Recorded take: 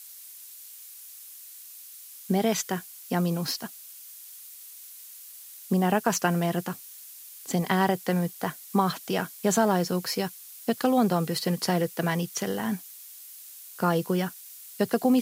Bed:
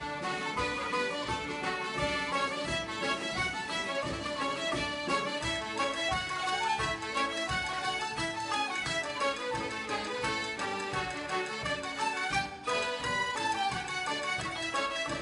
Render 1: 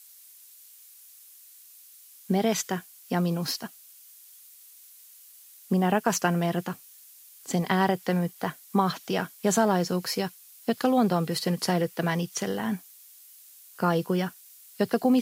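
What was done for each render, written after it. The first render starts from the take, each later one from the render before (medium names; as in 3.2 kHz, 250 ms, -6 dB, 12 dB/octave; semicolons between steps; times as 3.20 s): noise print and reduce 6 dB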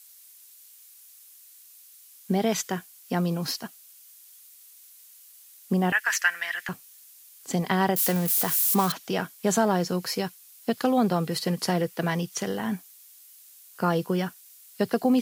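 5.92–6.69 s: resonant high-pass 1.8 kHz, resonance Q 5.7; 7.96–8.92 s: zero-crossing glitches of -20.5 dBFS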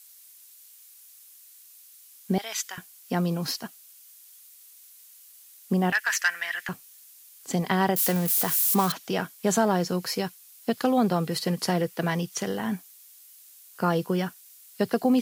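2.38–2.78 s: high-pass 1.4 kHz; 5.90–6.62 s: transformer saturation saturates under 2.2 kHz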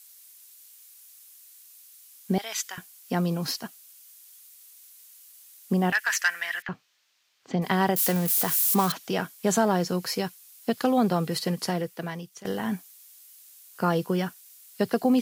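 6.62–7.62 s: distance through air 210 m; 11.38–12.45 s: fade out linear, to -17 dB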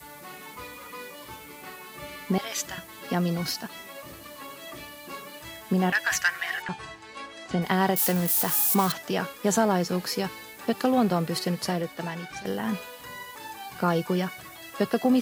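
add bed -9 dB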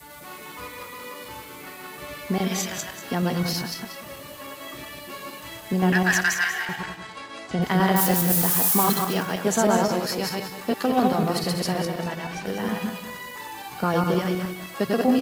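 backward echo that repeats 104 ms, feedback 43%, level -1 dB; delay 186 ms -11.5 dB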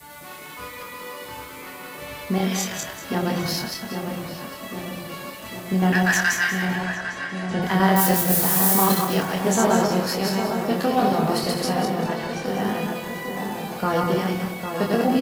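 doubling 26 ms -4.5 dB; on a send: filtered feedback delay 803 ms, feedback 65%, low-pass 1.7 kHz, level -6.5 dB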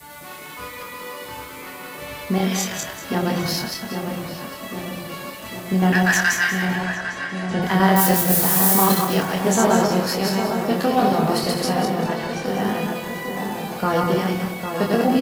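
trim +2 dB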